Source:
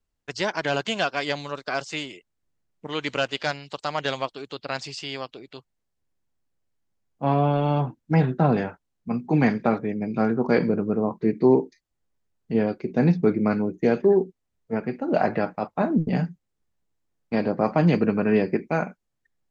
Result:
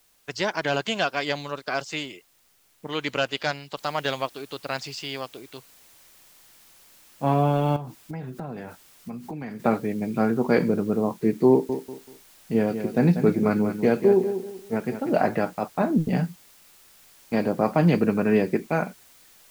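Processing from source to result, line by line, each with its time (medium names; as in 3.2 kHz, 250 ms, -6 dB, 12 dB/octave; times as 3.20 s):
3.77 s: noise floor step -63 dB -54 dB
7.76–9.60 s: compression, threshold -32 dBFS
11.50–15.27 s: feedback delay 191 ms, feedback 30%, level -9.5 dB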